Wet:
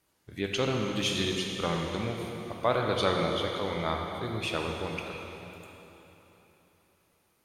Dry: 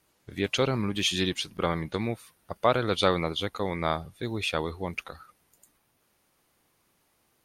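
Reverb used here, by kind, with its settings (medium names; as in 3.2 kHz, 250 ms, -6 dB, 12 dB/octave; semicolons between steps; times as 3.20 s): plate-style reverb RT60 3.6 s, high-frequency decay 0.9×, DRR 0.5 dB; trim -4.5 dB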